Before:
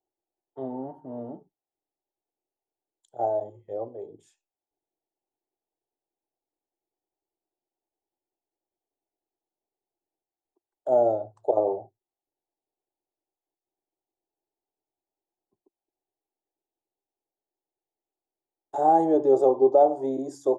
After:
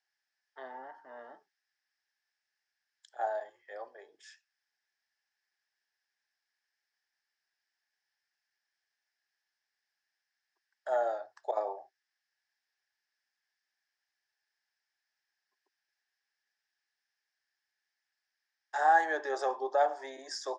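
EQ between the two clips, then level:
high-pass with resonance 1,700 Hz, resonance Q 8.7
high-frequency loss of the air 90 metres
parametric band 5,200 Hz +14.5 dB 0.39 octaves
+7.0 dB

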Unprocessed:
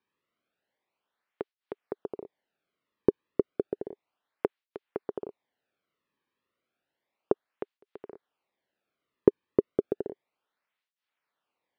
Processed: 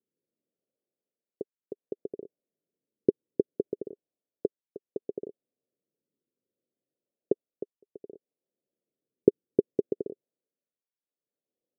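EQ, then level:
high-pass filter 120 Hz
Butterworth low-pass 550 Hz 36 dB per octave
0.0 dB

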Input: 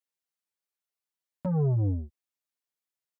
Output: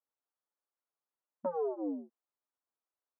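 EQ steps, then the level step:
linear-phase brick-wall high-pass 210 Hz
low-pass filter 1,300 Hz 24 dB per octave
low-shelf EQ 410 Hz −7.5 dB
+4.5 dB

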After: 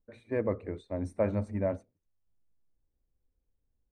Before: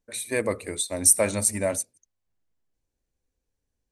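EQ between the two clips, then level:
low-pass filter 1,500 Hz 12 dB per octave
spectral tilt −2 dB per octave
−6.0 dB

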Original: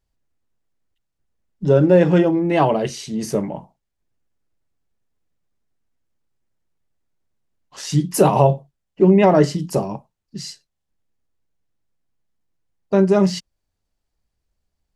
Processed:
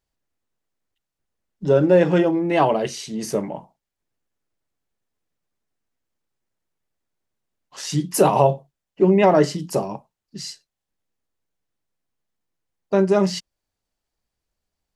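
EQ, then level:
low-shelf EQ 190 Hz −9 dB
0.0 dB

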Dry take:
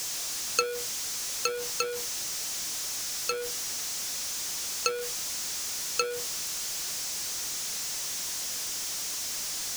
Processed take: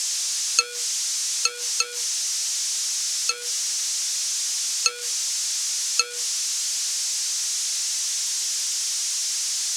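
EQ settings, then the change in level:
meter weighting curve ITU-R 468
−2.5 dB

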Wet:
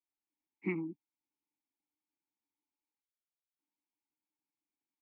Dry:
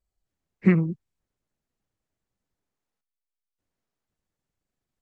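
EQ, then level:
formant filter u
low-shelf EQ 390 Hz −10 dB
+4.5 dB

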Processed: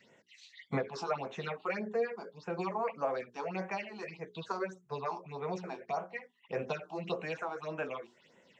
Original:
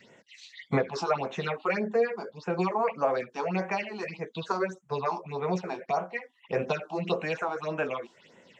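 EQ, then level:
mains-hum notches 50/100 Hz
mains-hum notches 60/120/180/240/300/360/420 Hz
−7.0 dB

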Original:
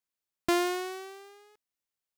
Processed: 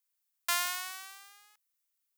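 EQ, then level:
high-pass filter 980 Hz 24 dB per octave
high-shelf EQ 7,500 Hz +12 dB
0.0 dB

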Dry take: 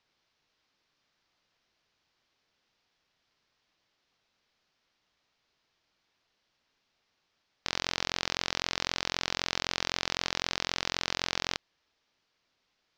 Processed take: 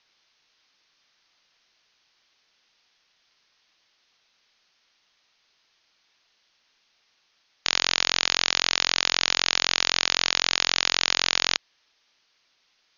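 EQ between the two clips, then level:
linear-phase brick-wall low-pass 6,700 Hz
tilt shelving filter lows −5 dB, about 1,300 Hz
parametric band 82 Hz −5 dB 2.6 octaves
+7.0 dB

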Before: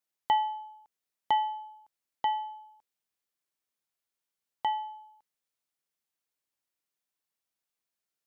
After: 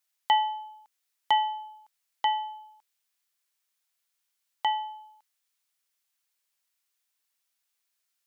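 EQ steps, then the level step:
tilt shelving filter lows −9 dB, about 640 Hz
0.0 dB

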